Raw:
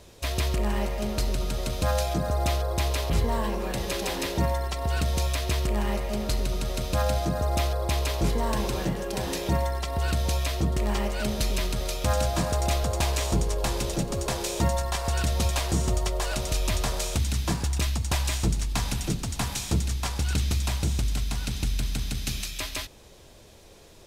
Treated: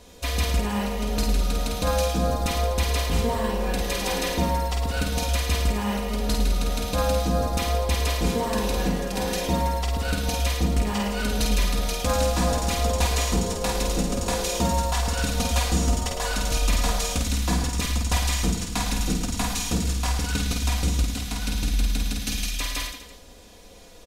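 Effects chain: comb 4.1 ms, depth 65%; on a send: reverse bouncing-ball echo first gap 50 ms, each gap 1.15×, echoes 5

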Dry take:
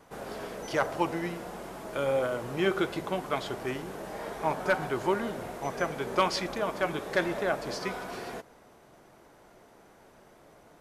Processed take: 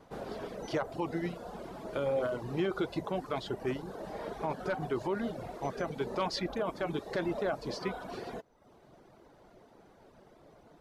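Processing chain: peaking EQ 4.1 kHz +8 dB 1.1 oct; reverb removal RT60 0.75 s; tilt shelf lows +6.5 dB, about 1.4 kHz; peak limiter -18 dBFS, peak gain reduction 8.5 dB; trim -4.5 dB

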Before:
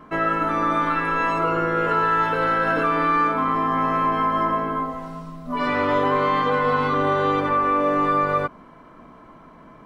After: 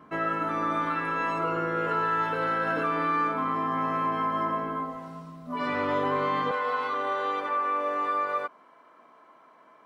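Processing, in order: high-pass 78 Hz 12 dB/octave, from 6.51 s 510 Hz; trim -6.5 dB

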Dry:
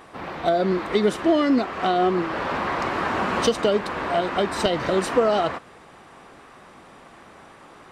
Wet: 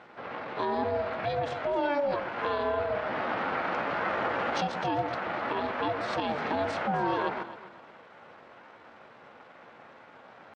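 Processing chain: distance through air 190 m; band-stop 700 Hz, Q 12; tempo 0.75×; ring modulator 290 Hz; peak limiter -18.5 dBFS, peak gain reduction 8.5 dB; high-pass 200 Hz 12 dB/octave; on a send: echo whose repeats swap between lows and highs 129 ms, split 1 kHz, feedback 53%, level -8 dB

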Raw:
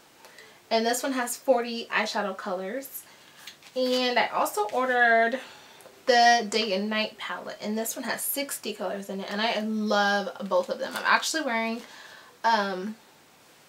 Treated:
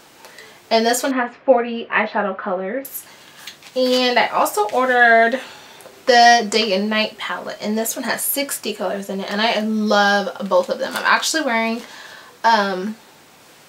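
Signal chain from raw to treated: 1.11–2.85 s: low-pass 2.6 kHz 24 dB/octave; loudness maximiser +9.5 dB; trim -1 dB

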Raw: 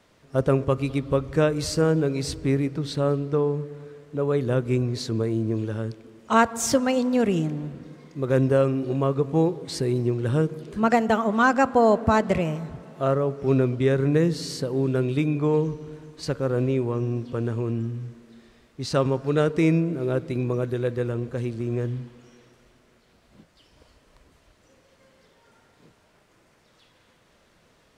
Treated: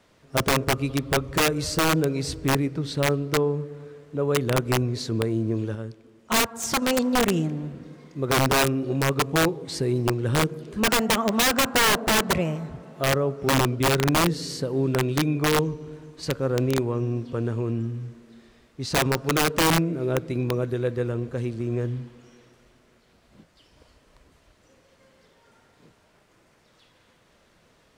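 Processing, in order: integer overflow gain 14.5 dB; 5.75–6.82 s: upward expansion 1.5:1, over -30 dBFS

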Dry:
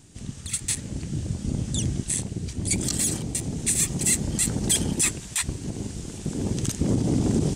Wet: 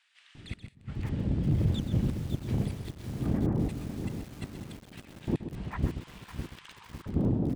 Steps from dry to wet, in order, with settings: fade out at the end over 1.35 s; 3.33–4.93 s: gate -20 dBFS, range -37 dB; 5.52–6.71 s: elliptic high-pass 1 kHz, stop band 40 dB; bands offset in time highs, lows 350 ms, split 1.5 kHz; inverted gate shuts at -15 dBFS, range -31 dB; saturation -21.5 dBFS, distortion -16 dB; distance through air 450 m; delay 129 ms -10 dB; bit-crushed delay 554 ms, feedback 55%, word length 8-bit, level -8 dB; trim +4.5 dB

